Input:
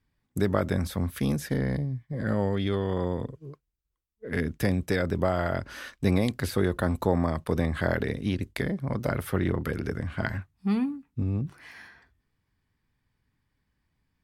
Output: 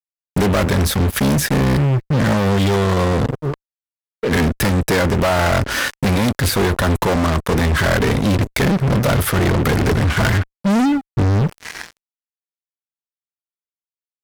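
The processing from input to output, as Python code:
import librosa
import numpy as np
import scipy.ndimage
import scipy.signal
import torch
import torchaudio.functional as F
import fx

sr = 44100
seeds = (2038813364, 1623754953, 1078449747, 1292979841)

y = fx.rider(x, sr, range_db=4, speed_s=0.5)
y = fx.fuzz(y, sr, gain_db=37.0, gate_db=-44.0)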